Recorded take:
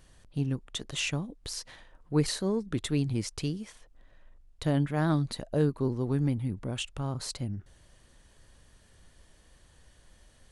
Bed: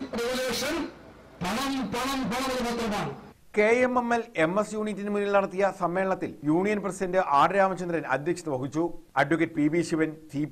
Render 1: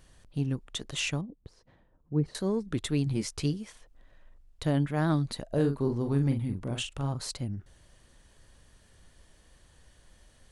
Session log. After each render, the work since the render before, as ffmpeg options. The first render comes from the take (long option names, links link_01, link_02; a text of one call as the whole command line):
ffmpeg -i in.wav -filter_complex "[0:a]asettb=1/sr,asplit=3[link_01][link_02][link_03];[link_01]atrim=end=1.214[link_04];[link_02]atrim=start=1.21:end=2.35,asetpts=PTS-STARTPTS,afade=type=in:duration=0.004:curve=qsin,afade=type=out:start_time=1.136:duration=0.004:curve=qsin,bandpass=frequency=150:width_type=q:width=0.61[link_05];[link_03]atrim=start=2.346[link_06];[link_04][link_05]acrossfade=duration=0.004:curve1=hsin:curve2=qsin[link_07];[link_07][link_06]acrossfade=duration=0.004:curve1=qsin:curve2=hsin,asettb=1/sr,asplit=3[link_08][link_09][link_10];[link_08]atrim=end=3.054[link_11];[link_09]atrim=start=3.05:end=3.54,asetpts=PTS-STARTPTS,afade=type=in:duration=0.004:curve=qsin,afade=type=out:start_time=0.486:duration=0.004:curve=qsin,asplit=2[link_12][link_13];[link_13]adelay=14,volume=-5.5dB[link_14];[link_12][link_14]amix=inputs=2:normalize=0,atrim=end_sample=21609[link_15];[link_10]atrim=start=3.536[link_16];[link_11][link_15]acrossfade=duration=0.004:curve1=hsin:curve2=qsin[link_17];[link_17][link_16]acrossfade=duration=0.004:curve1=qsin:curve2=hsin,asettb=1/sr,asplit=3[link_18][link_19][link_20];[link_18]atrim=end=5.464[link_21];[link_19]atrim=start=5.46:end=7.13,asetpts=PTS-STARTPTS,afade=type=in:duration=0.004:curve=qsin,afade=type=out:start_time=1.666:duration=0.004:curve=qsin,asplit=2[link_22][link_23];[link_23]adelay=43,volume=-6.5dB[link_24];[link_22][link_24]amix=inputs=2:normalize=0,atrim=end_sample=73647[link_25];[link_20]atrim=start=7.126[link_26];[link_21][link_25]acrossfade=duration=0.004:curve1=hsin:curve2=qsin[link_27];[link_27][link_26]acrossfade=duration=0.004:curve1=qsin:curve2=hsin" out.wav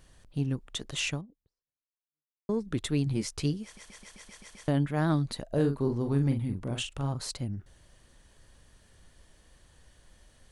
ffmpeg -i in.wav -filter_complex "[0:a]asplit=10[link_01][link_02][link_03][link_04][link_05][link_06][link_07][link_08][link_09][link_10];[link_01]atrim=end=2.49,asetpts=PTS-STARTPTS,afade=type=out:start_time=1.12:duration=1.37:curve=exp[link_11];[link_02]atrim=start=2.49:end=3.772,asetpts=PTS-STARTPTS,afade=type=in:duration=0.004:curve=hsin[link_12];[link_03]atrim=start=3.638:end=3.772[link_13];[link_04]atrim=start=3.638:end=3.772[link_14];[link_05]atrim=start=3.638:end=3.772[link_15];[link_06]atrim=start=3.638:end=3.772[link_16];[link_07]atrim=start=3.638:end=3.772[link_17];[link_08]atrim=start=3.638:end=3.772[link_18];[link_09]atrim=start=3.638:end=3.772[link_19];[link_10]atrim=start=4.678[link_20];[link_11][link_12]concat=n=2:v=0:a=1[link_21];[link_21][link_13]acrossfade=duration=0.004:curve1=hsin:curve2=hsin[link_22];[link_22][link_14]acrossfade=duration=0.004:curve1=hsin:curve2=hsin[link_23];[link_23][link_15]acrossfade=duration=0.004:curve1=hsin:curve2=hsin[link_24];[link_24][link_16]acrossfade=duration=0.004:curve1=hsin:curve2=hsin[link_25];[link_25][link_17]acrossfade=duration=0.004:curve1=hsin:curve2=hsin[link_26];[link_26][link_18]acrossfade=duration=0.004:curve1=hsin:curve2=hsin[link_27];[link_27][link_19]acrossfade=duration=0.004:curve1=hsin:curve2=hsin[link_28];[link_28][link_20]acrossfade=duration=0.004:curve1=hsin:curve2=hsin" out.wav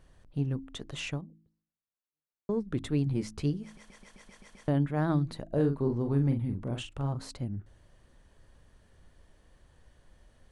ffmpeg -i in.wav -af "highshelf=frequency=2500:gain=-11,bandreject=frequency=53.76:width_type=h:width=4,bandreject=frequency=107.52:width_type=h:width=4,bandreject=frequency=161.28:width_type=h:width=4,bandreject=frequency=215.04:width_type=h:width=4,bandreject=frequency=268.8:width_type=h:width=4,bandreject=frequency=322.56:width_type=h:width=4" out.wav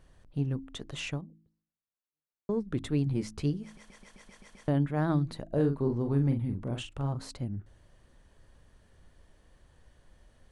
ffmpeg -i in.wav -af anull out.wav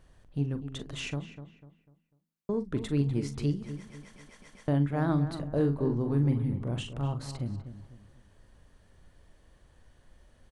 ffmpeg -i in.wav -filter_complex "[0:a]asplit=2[link_01][link_02];[link_02]adelay=42,volume=-12dB[link_03];[link_01][link_03]amix=inputs=2:normalize=0,asplit=2[link_04][link_05];[link_05]adelay=248,lowpass=frequency=2300:poles=1,volume=-11dB,asplit=2[link_06][link_07];[link_07]adelay=248,lowpass=frequency=2300:poles=1,volume=0.37,asplit=2[link_08][link_09];[link_09]adelay=248,lowpass=frequency=2300:poles=1,volume=0.37,asplit=2[link_10][link_11];[link_11]adelay=248,lowpass=frequency=2300:poles=1,volume=0.37[link_12];[link_04][link_06][link_08][link_10][link_12]amix=inputs=5:normalize=0" out.wav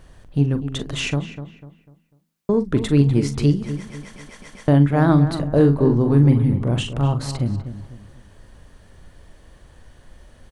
ffmpeg -i in.wav -af "volume=12dB" out.wav